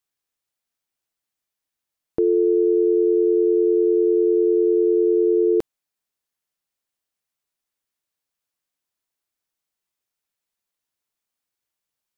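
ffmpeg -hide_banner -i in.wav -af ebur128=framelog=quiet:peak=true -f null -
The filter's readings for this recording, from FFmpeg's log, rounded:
Integrated loudness:
  I:         -18.4 LUFS
  Threshold: -28.6 LUFS
Loudness range:
  LRA:         7.0 LU
  Threshold: -40.4 LUFS
  LRA low:   -25.0 LUFS
  LRA high:  -18.0 LUFS
True peak:
  Peak:      -11.3 dBFS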